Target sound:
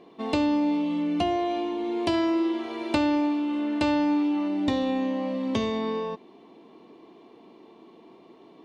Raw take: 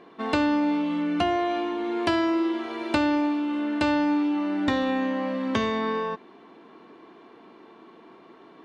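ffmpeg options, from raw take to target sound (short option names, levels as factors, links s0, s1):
-af "asetnsamples=n=441:p=0,asendcmd='2.14 equalizer g -7;4.48 equalizer g -15',equalizer=f=1500:t=o:w=0.72:g=-13.5"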